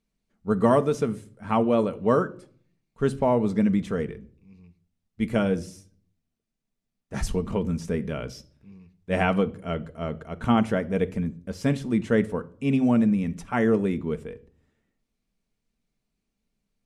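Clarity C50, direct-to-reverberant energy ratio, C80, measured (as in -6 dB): 19.5 dB, 9.0 dB, 24.0 dB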